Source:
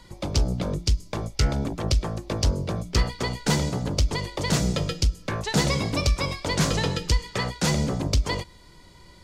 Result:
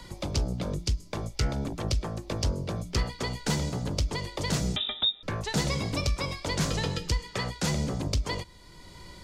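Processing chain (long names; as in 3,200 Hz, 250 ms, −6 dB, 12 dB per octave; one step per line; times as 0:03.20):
0:04.76–0:05.23: voice inversion scrambler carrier 3,700 Hz
multiband upward and downward compressor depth 40%
level −5 dB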